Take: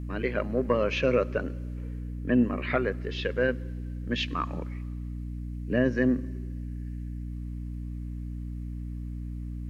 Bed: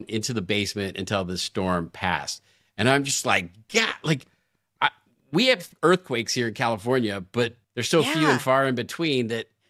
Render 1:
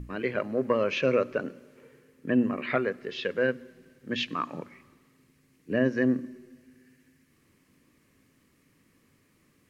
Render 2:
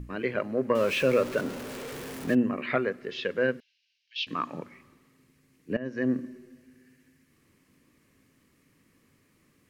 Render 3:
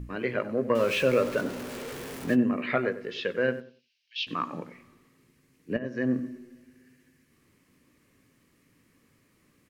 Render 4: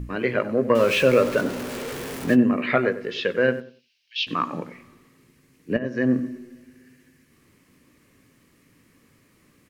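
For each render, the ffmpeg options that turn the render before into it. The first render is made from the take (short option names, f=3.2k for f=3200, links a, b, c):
-af "bandreject=f=60:t=h:w=6,bandreject=f=120:t=h:w=6,bandreject=f=180:t=h:w=6,bandreject=f=240:t=h:w=6,bandreject=f=300:t=h:w=6"
-filter_complex "[0:a]asettb=1/sr,asplit=3[a][b][c];[a]atrim=end=0.754[d];[b]atrim=start=0.75:end=2.35,asetpts=PTS-STARTPTS,afade=t=in:d=0.004:c=qsin,afade=t=out:st=1.596:d=0.004:c=qsin,aeval=exprs='val(0)+0.5*0.0211*sgn(val(0))':c=same[e];[c]atrim=start=2.346[f];[d][e]acrossfade=d=0.004:c1=hsin:c2=qsin[g];[g][f]acrossfade=d=0.004:c1=qsin:c2=hsin,asettb=1/sr,asplit=3[h][i][j];[h]atrim=end=3.604[k];[i]atrim=start=3.6:end=4.27,asetpts=PTS-STARTPTS,afade=t=in:d=0.004:c=qsin,afade=t=out:st=0.666:d=0.004:c=qsin,asuperpass=centerf=3800:order=8:qfactor=1.2[l];[j]atrim=start=4.266[m];[k][l]acrossfade=d=0.004:c1=hsin:c2=qsin[n];[n][m]acrossfade=d=0.004:c1=qsin:c2=hsin,asplit=2[o][p];[o]atrim=end=5.77,asetpts=PTS-STARTPTS,afade=t=out:st=5.766:d=0.004:c=hsin:silence=0.112202[q];[p]atrim=start=5.77,asetpts=PTS-STARTPTS,afade=t=in:d=0.41:silence=0.112202[r];[q][r]concat=n=2:v=0:a=1"
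-filter_complex "[0:a]asplit=2[a][b];[b]adelay=17,volume=-12dB[c];[a][c]amix=inputs=2:normalize=0,asplit=2[d][e];[e]adelay=94,lowpass=f=1.6k:p=1,volume=-13dB,asplit=2[f][g];[g]adelay=94,lowpass=f=1.6k:p=1,volume=0.24,asplit=2[h][i];[i]adelay=94,lowpass=f=1.6k:p=1,volume=0.24[j];[d][f][h][j]amix=inputs=4:normalize=0"
-af "volume=6dB"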